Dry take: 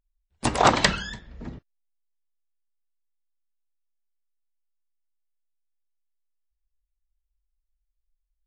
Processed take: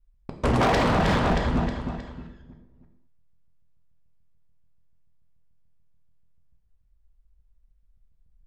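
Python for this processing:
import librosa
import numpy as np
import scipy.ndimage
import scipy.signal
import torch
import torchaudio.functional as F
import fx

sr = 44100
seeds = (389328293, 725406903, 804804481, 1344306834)

p1 = fx.local_reverse(x, sr, ms=145.0)
p2 = fx.lowpass(p1, sr, hz=1300.0, slope=6)
p3 = fx.low_shelf(p2, sr, hz=480.0, db=5.0)
p4 = p3 + fx.echo_feedback(p3, sr, ms=314, feedback_pct=39, wet_db=-9, dry=0)
p5 = fx.rev_gated(p4, sr, seeds[0], gate_ms=260, shape='falling', drr_db=2.0)
p6 = fx.over_compress(p5, sr, threshold_db=-26.0, ratio=-0.5)
p7 = p5 + (p6 * 10.0 ** (0.0 / 20.0))
p8 = np.clip(10.0 ** (18.0 / 20.0) * p7, -1.0, 1.0) / 10.0 ** (18.0 / 20.0)
y = fx.doppler_dist(p8, sr, depth_ms=0.17)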